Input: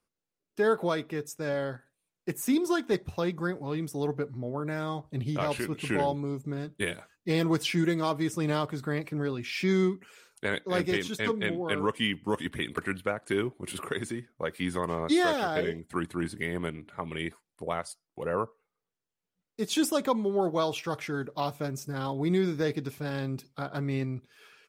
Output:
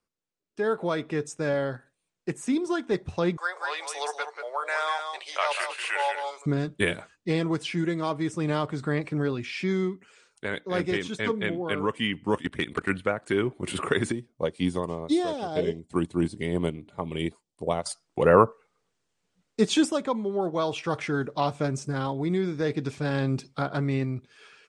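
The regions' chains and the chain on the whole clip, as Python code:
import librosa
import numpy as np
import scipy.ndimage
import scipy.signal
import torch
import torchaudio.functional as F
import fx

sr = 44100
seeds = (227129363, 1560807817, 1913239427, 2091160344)

y = fx.chain(x, sr, fx.bessel_highpass(hz=990.0, order=8),
    fx.echo_single(ms=187, db=-7.0), at=(3.37, 6.46))
y = fx.chain(y, sr, fx.clip_hard(threshold_db=-20.0),
    fx.level_steps(step_db=16), at=(12.38, 12.89))
y = fx.chain(y, sr, fx.peak_eq(hz=1700.0, db=-13.0, octaves=1.0),
    fx.notch(hz=1300.0, q=12.0),
    fx.upward_expand(threshold_db=-43.0, expansion=1.5), at=(14.12, 17.86))
y = scipy.signal.sosfilt(scipy.signal.butter(8, 9200.0, 'lowpass', fs=sr, output='sos'), y)
y = fx.dynamic_eq(y, sr, hz=5700.0, q=0.78, threshold_db=-48.0, ratio=4.0, max_db=-4)
y = fx.rider(y, sr, range_db=10, speed_s=0.5)
y = F.gain(torch.from_numpy(y), 3.0).numpy()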